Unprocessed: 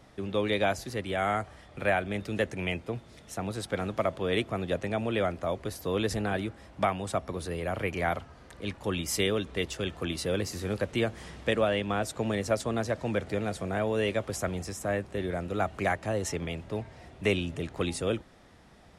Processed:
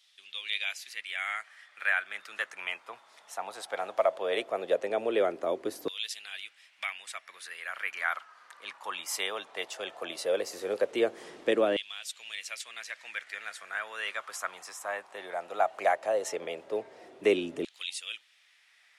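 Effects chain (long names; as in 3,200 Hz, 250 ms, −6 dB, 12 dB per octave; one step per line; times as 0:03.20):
auto-filter high-pass saw down 0.17 Hz 310–3,400 Hz
level −2.5 dB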